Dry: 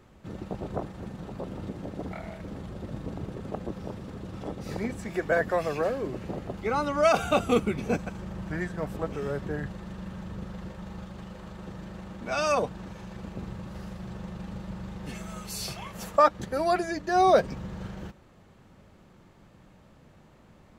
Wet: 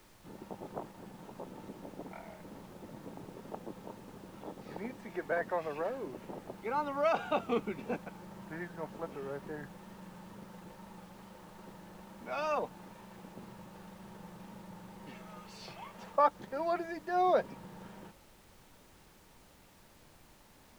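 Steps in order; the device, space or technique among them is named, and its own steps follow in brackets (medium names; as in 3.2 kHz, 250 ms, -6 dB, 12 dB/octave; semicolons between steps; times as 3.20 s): horn gramophone (band-pass 190–3500 Hz; peaking EQ 900 Hz +8.5 dB 0.2 oct; wow and flutter; pink noise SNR 22 dB); trim -8.5 dB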